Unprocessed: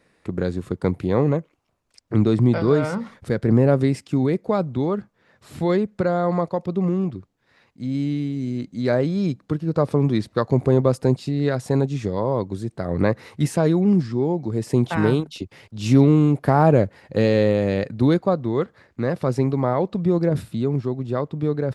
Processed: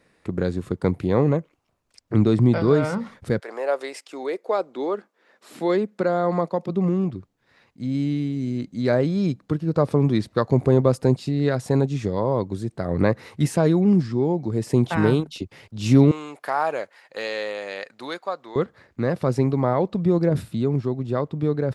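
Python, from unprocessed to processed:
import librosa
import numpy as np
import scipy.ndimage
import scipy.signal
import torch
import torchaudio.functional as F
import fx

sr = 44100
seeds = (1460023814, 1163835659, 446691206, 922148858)

y = fx.highpass(x, sr, hz=fx.line((3.39, 630.0), (6.68, 150.0)), slope=24, at=(3.39, 6.68), fade=0.02)
y = fx.highpass(y, sr, hz=900.0, slope=12, at=(16.11, 18.56))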